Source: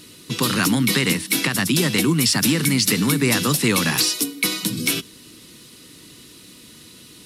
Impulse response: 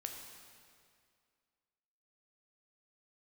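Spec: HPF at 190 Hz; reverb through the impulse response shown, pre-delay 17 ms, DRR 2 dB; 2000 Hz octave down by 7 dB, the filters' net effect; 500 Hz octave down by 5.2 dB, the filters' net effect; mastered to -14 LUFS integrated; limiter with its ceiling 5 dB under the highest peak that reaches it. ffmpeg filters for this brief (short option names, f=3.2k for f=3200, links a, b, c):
-filter_complex "[0:a]highpass=190,equalizer=f=500:t=o:g=-6.5,equalizer=f=2k:t=o:g=-8.5,alimiter=limit=-12.5dB:level=0:latency=1,asplit=2[a][b];[1:a]atrim=start_sample=2205,adelay=17[c];[b][c]afir=irnorm=-1:irlink=0,volume=0dB[d];[a][d]amix=inputs=2:normalize=0,volume=7dB"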